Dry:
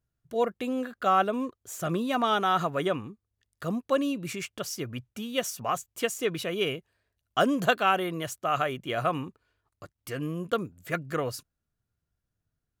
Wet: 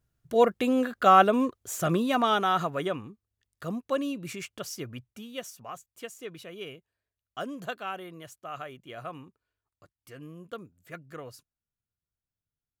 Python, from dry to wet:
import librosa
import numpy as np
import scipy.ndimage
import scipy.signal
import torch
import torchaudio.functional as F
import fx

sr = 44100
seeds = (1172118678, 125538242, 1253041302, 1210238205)

y = fx.gain(x, sr, db=fx.line((1.56, 5.5), (2.93, -3.0), (4.84, -3.0), (5.69, -12.0)))